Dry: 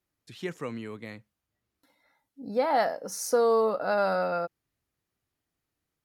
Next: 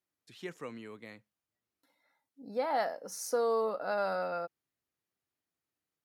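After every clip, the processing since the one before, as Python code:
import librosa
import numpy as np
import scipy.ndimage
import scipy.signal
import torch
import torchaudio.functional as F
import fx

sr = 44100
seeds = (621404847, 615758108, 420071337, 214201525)

y = fx.highpass(x, sr, hz=220.0, slope=6)
y = y * 10.0 ** (-6.0 / 20.0)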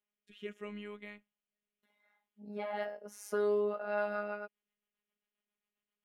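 y = fx.high_shelf_res(x, sr, hz=3700.0, db=-6.5, q=3.0)
y = fx.rotary_switch(y, sr, hz=0.8, then_hz=7.5, switch_at_s=3.33)
y = fx.robotise(y, sr, hz=207.0)
y = y * 10.0 ** (2.5 / 20.0)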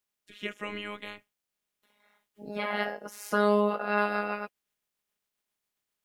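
y = fx.spec_clip(x, sr, under_db=16)
y = y * 10.0 ** (7.0 / 20.0)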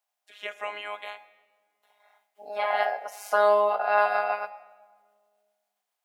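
y = fx.highpass_res(x, sr, hz=730.0, q=6.7)
y = fx.room_shoebox(y, sr, seeds[0], volume_m3=1900.0, walls='mixed', distance_m=0.41)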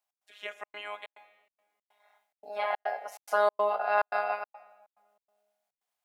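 y = fx.step_gate(x, sr, bpm=142, pattern='x.xxxx.xxx.xxx.x', floor_db=-60.0, edge_ms=4.5)
y = y * 10.0 ** (-3.5 / 20.0)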